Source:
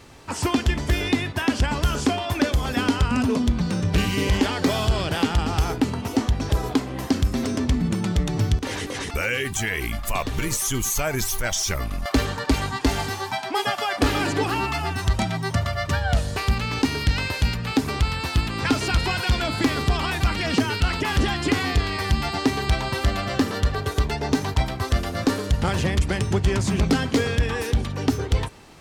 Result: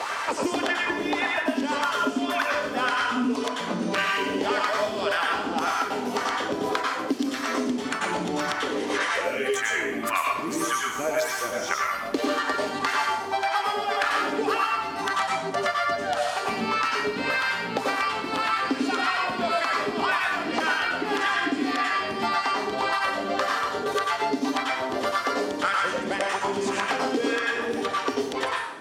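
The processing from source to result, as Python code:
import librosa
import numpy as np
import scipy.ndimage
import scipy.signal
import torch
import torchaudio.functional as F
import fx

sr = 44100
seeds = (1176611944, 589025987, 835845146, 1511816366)

p1 = fx.tilt_eq(x, sr, slope=4.5)
p2 = np.sign(p1) * np.maximum(np.abs(p1) - 10.0 ** (-32.0 / 20.0), 0.0)
p3 = p1 + (p2 * librosa.db_to_amplitude(-4.0))
p4 = fx.wah_lfo(p3, sr, hz=1.8, low_hz=260.0, high_hz=1500.0, q=3.1)
p5 = fx.rev_plate(p4, sr, seeds[0], rt60_s=0.57, hf_ratio=0.9, predelay_ms=80, drr_db=-3.0)
p6 = fx.band_squash(p5, sr, depth_pct=100)
y = p6 * librosa.db_to_amplitude(1.5)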